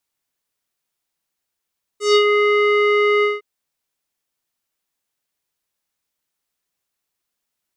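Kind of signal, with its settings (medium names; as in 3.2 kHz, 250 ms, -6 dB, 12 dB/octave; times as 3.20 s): synth note square G#4 12 dB/octave, low-pass 2.2 kHz, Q 2.5, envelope 2 oct, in 0.27 s, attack 147 ms, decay 0.08 s, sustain -4.5 dB, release 0.18 s, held 1.23 s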